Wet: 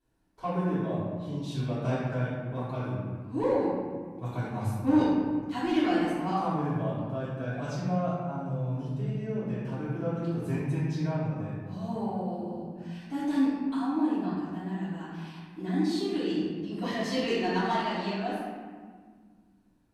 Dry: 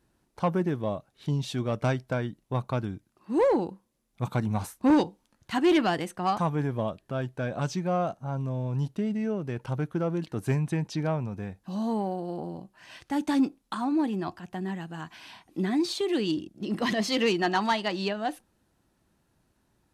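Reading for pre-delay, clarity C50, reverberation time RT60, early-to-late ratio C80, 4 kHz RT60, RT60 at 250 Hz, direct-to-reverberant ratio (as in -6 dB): 3 ms, -2.5 dB, 1.7 s, 0.0 dB, 0.95 s, 2.6 s, -14.0 dB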